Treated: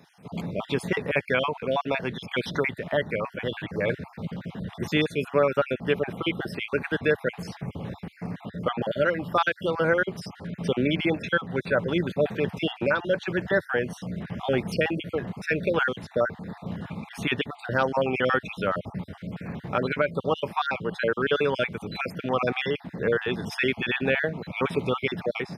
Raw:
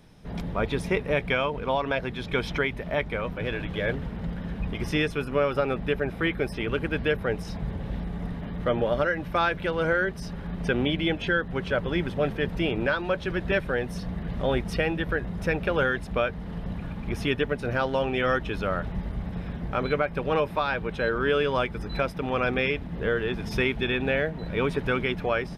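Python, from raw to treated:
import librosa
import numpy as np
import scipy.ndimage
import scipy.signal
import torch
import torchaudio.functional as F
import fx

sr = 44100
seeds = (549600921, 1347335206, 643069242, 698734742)

y = fx.spec_dropout(x, sr, seeds[0], share_pct=41)
y = scipy.signal.sosfilt(scipy.signal.butter(4, 94.0, 'highpass', fs=sr, output='sos'), y)
y = fx.low_shelf(y, sr, hz=160.0, db=-3.5)
y = F.gain(torch.from_numpy(y), 3.0).numpy()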